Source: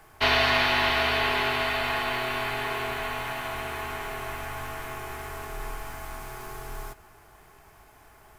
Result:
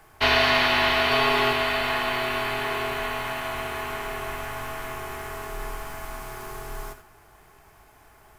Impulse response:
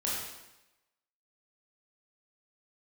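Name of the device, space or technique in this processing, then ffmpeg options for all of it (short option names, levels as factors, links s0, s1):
keyed gated reverb: -filter_complex "[0:a]asplit=3[s0][s1][s2];[1:a]atrim=start_sample=2205[s3];[s1][s3]afir=irnorm=-1:irlink=0[s4];[s2]apad=whole_len=369804[s5];[s4][s5]sidechaingate=range=0.0224:threshold=0.00447:ratio=16:detection=peak,volume=0.237[s6];[s0][s6]amix=inputs=2:normalize=0,asettb=1/sr,asplit=3[s7][s8][s9];[s7]atrim=end=1.104[s10];[s8]atrim=start=1.1:end=1.53,asetpts=PTS-STARTPTS,afade=t=in:d=0.004:c=qsin,afade=t=out:st=0.426:d=0.004:c=qsin,aecho=1:1:7.3:0.66,atrim=end_sample=18963[s11];[s9]atrim=start=1.526[s12];[s10][s11]acrossfade=d=0.004:c1=hsin:c2=qsin[s13];[s13][s12]acrossfade=d=0.004:c1=qsin:c2=hsin"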